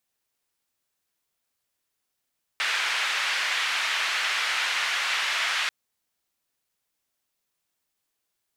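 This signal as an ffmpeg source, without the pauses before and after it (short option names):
-f lavfi -i "anoisesrc=c=white:d=3.09:r=44100:seed=1,highpass=f=1700,lowpass=f=2200,volume=-7.5dB"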